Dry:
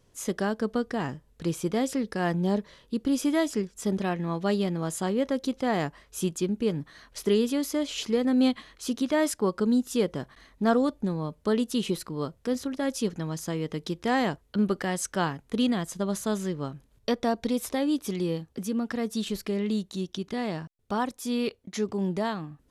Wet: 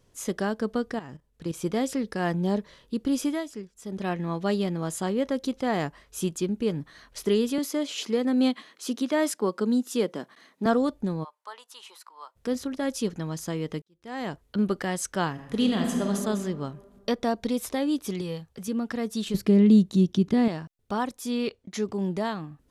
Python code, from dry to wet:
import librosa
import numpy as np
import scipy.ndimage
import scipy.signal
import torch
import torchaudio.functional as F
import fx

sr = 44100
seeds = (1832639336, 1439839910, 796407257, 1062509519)

y = fx.level_steps(x, sr, step_db=14, at=(0.94, 1.62))
y = fx.highpass(y, sr, hz=190.0, slope=24, at=(7.58, 10.66))
y = fx.ladder_highpass(y, sr, hz=830.0, resonance_pct=60, at=(11.23, 12.35), fade=0.02)
y = fx.reverb_throw(y, sr, start_s=15.31, length_s=0.79, rt60_s=1.8, drr_db=1.0)
y = fx.peak_eq(y, sr, hz=290.0, db=-13.0, octaves=0.77, at=(18.21, 18.68))
y = fx.peak_eq(y, sr, hz=160.0, db=13.0, octaves=2.7, at=(19.34, 20.48))
y = fx.lowpass(y, sr, hz=8500.0, slope=12, at=(21.31, 21.71))
y = fx.edit(y, sr, fx.fade_down_up(start_s=3.23, length_s=0.87, db=-9.5, fade_s=0.21),
    fx.fade_in_span(start_s=13.82, length_s=0.6, curve='qua'), tone=tone)